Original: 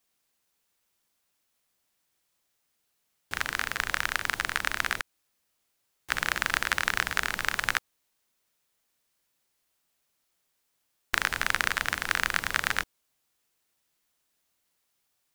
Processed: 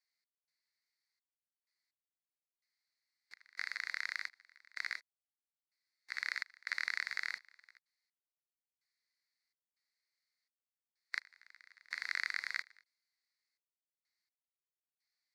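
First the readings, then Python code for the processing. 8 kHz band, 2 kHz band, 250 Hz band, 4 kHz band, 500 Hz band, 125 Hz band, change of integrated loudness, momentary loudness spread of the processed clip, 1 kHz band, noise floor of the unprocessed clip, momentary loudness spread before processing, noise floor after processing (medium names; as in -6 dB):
-21.0 dB, -12.0 dB, under -35 dB, -13.5 dB, under -25 dB, under -40 dB, -11.5 dB, 9 LU, -21.5 dB, -77 dBFS, 5 LU, under -85 dBFS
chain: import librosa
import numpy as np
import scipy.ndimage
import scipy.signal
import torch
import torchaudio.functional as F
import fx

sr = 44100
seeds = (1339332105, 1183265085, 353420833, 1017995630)

y = fx.hpss(x, sr, part='percussive', gain_db=-11)
y = fx.step_gate(y, sr, bpm=63, pattern='x.xxx..x...xx', floor_db=-24.0, edge_ms=4.5)
y = fx.double_bandpass(y, sr, hz=3000.0, octaves=1.1)
y = F.gain(torch.from_numpy(y), 3.0).numpy()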